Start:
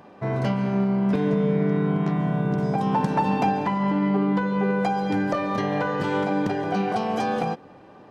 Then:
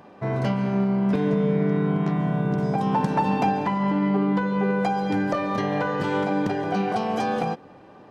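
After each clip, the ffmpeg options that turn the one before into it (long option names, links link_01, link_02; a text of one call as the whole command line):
ffmpeg -i in.wav -af anull out.wav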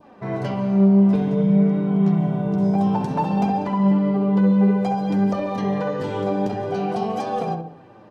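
ffmpeg -i in.wav -filter_complex "[0:a]asplit=2[link_01][link_02];[link_02]adelay=66,lowpass=frequency=1400:poles=1,volume=-3dB,asplit=2[link_03][link_04];[link_04]adelay=66,lowpass=frequency=1400:poles=1,volume=0.52,asplit=2[link_05][link_06];[link_06]adelay=66,lowpass=frequency=1400:poles=1,volume=0.52,asplit=2[link_07][link_08];[link_08]adelay=66,lowpass=frequency=1400:poles=1,volume=0.52,asplit=2[link_09][link_10];[link_10]adelay=66,lowpass=frequency=1400:poles=1,volume=0.52,asplit=2[link_11][link_12];[link_12]adelay=66,lowpass=frequency=1400:poles=1,volume=0.52,asplit=2[link_13][link_14];[link_14]adelay=66,lowpass=frequency=1400:poles=1,volume=0.52[link_15];[link_01][link_03][link_05][link_07][link_09][link_11][link_13][link_15]amix=inputs=8:normalize=0,flanger=delay=3.1:depth=7.7:regen=40:speed=0.55:shape=triangular,adynamicequalizer=threshold=0.00447:dfrequency=1800:dqfactor=1.3:tfrequency=1800:tqfactor=1.3:attack=5:release=100:ratio=0.375:range=3:mode=cutabove:tftype=bell,volume=2.5dB" out.wav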